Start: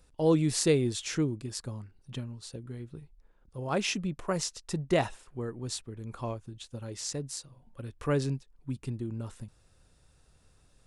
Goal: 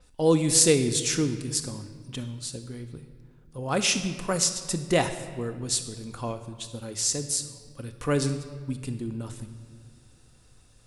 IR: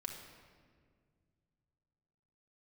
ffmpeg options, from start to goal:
-filter_complex "[0:a]asplit=2[s0][s1];[1:a]atrim=start_sample=2205,highshelf=f=2100:g=10[s2];[s1][s2]afir=irnorm=-1:irlink=0,volume=0.891[s3];[s0][s3]amix=inputs=2:normalize=0,adynamicequalizer=threshold=0.00447:dfrequency=6600:dqfactor=0.7:tfrequency=6600:tqfactor=0.7:attack=5:release=100:ratio=0.375:range=3.5:mode=boostabove:tftype=highshelf,volume=0.891"

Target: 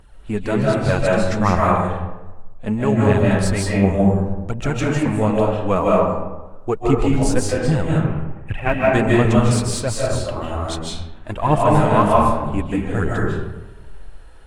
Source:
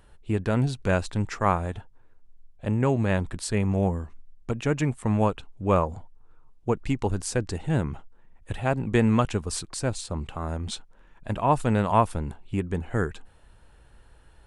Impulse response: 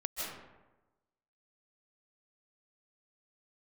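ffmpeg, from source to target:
-filter_complex "[0:a]asettb=1/sr,asplit=3[s0][s1][s2];[s0]atrim=end=7.884[s3];[s1]atrim=start=7.88:end=8.9,asetpts=PTS-STARTPTS,afade=t=in:d=0.004:c=qsin,afade=t=out:st=1.016:d=0.004:c=qsin,highshelf=f=3500:t=q:w=3:g=-11.5[s4];[s2]atrim=start=8.896[s5];[s3][s4]acrossfade=d=0.004:c1=hsin:c2=qsin[s6];[s6][s5]acrossfade=d=0.004:c1=qsin:c2=hsin,aphaser=in_gain=1:out_gain=1:delay=4.8:decay=0.55:speed=1.3:type=triangular[s7];[1:a]atrim=start_sample=2205[s8];[s7][s8]afir=irnorm=-1:irlink=0,volume=1.58"

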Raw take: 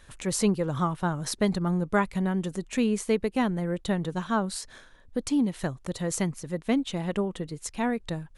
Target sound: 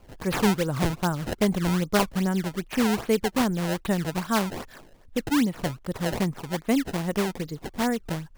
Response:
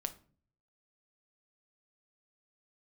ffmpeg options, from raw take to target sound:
-af "acrusher=samples=22:mix=1:aa=0.000001:lfo=1:lforange=35.2:lforate=2.5,volume=1.26"

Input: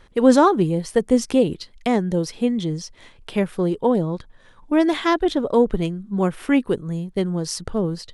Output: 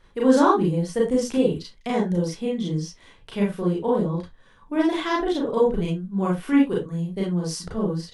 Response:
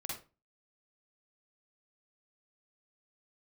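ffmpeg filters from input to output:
-filter_complex "[1:a]atrim=start_sample=2205,afade=t=out:st=0.22:d=0.01,atrim=end_sample=10143,asetrate=61740,aresample=44100[s0];[0:a][s0]afir=irnorm=-1:irlink=0"

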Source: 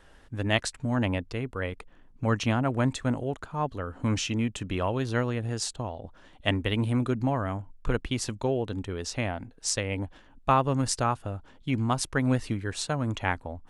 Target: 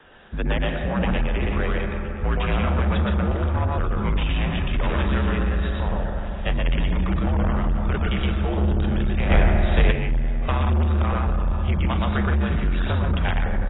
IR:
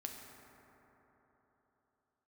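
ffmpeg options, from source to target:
-filter_complex "[0:a]highpass=f=74:w=0.5412,highpass=f=74:w=1.3066,asettb=1/sr,asplit=3[s0][s1][s2];[s0]atrim=end=4.344[s3];[s1]atrim=start=4.34:end=4.96,asetpts=PTS-STARTPTS,afade=t=in:d=0.004:c=qsin,afade=t=out:st=0.616:d=0.004:c=qsin,aeval=exprs='0.075*(abs(mod(val(0)/0.075+3,4)-2)-1)':c=same[s4];[s2]atrim=start=4.956[s5];[s3][s4]acrossfade=d=0.004:c1=hsin:c2=qsin[s6];[s6][s5]acrossfade=d=0.004:c1=qsin:c2=hsin,asubboost=boost=6:cutoff=140,acrossover=split=440|1500|3700[s7][s8][s9][s10];[s7]acompressor=threshold=0.0631:ratio=4[s11];[s8]acompressor=threshold=0.02:ratio=4[s12];[s9]acompressor=threshold=0.0126:ratio=4[s13];[s10]acompressor=threshold=0.00398:ratio=4[s14];[s11][s12][s13][s14]amix=inputs=4:normalize=0,bandreject=f=60:t=h:w=6,bandreject=f=120:t=h:w=6,bandreject=f=180:t=h:w=6,bandreject=f=240:t=h:w=6,bandreject=f=300:t=h:w=6,bandreject=f=360:t=h:w=6,bandreject=f=420:t=h:w=6,aecho=1:1:905:0.112,asplit=2[s15][s16];[1:a]atrim=start_sample=2205,highshelf=f=7700:g=6.5,adelay=119[s17];[s16][s17]afir=irnorm=-1:irlink=0,volume=1.33[s18];[s15][s18]amix=inputs=2:normalize=0,afreqshift=-56,asoftclip=type=tanh:threshold=0.0562,asplit=3[s19][s20][s21];[s19]afade=t=out:st=9.3:d=0.02[s22];[s20]acontrast=77,afade=t=in:st=9.3:d=0.02,afade=t=out:st=9.9:d=0.02[s23];[s21]afade=t=in:st=9.9:d=0.02[s24];[s22][s23][s24]amix=inputs=3:normalize=0,volume=2.51" -ar 16000 -c:a aac -b:a 16k

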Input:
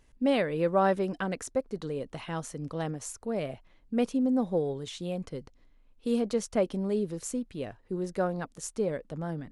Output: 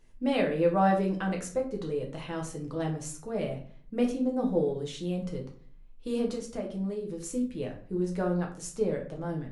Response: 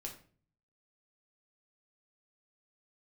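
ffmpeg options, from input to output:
-filter_complex "[0:a]asettb=1/sr,asplit=3[s0][s1][s2];[s0]atrim=end=6.284[s3];[s1]atrim=start=6.28:end=7.33,asetpts=PTS-STARTPTS,afade=t=in:d=0.004:c=qsin,afade=t=out:st=1.046:d=0.004:c=qsin,acompressor=threshold=0.02:ratio=3[s4];[s2]atrim=start=7.326[s5];[s3][s4]acrossfade=d=0.004:c1=hsin:c2=qsin[s6];[s6][s5]acrossfade=d=0.004:c1=qsin:c2=hsin[s7];[1:a]atrim=start_sample=2205[s8];[s7][s8]afir=irnorm=-1:irlink=0,volume=1.33"

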